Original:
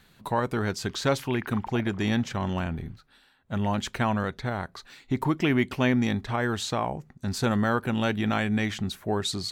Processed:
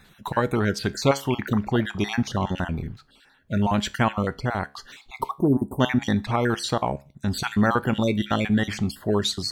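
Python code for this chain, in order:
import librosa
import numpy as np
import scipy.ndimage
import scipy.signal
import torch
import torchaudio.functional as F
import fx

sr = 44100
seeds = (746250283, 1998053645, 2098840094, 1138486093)

y = fx.spec_dropout(x, sr, seeds[0], share_pct=34)
y = fx.cheby1_bandstop(y, sr, low_hz=950.0, high_hz=8500.0, order=4, at=(5.31, 5.8))
y = fx.comb_fb(y, sr, f0_hz=69.0, decay_s=0.32, harmonics='all', damping=0.0, mix_pct=40)
y = F.gain(torch.from_numpy(y), 8.0).numpy()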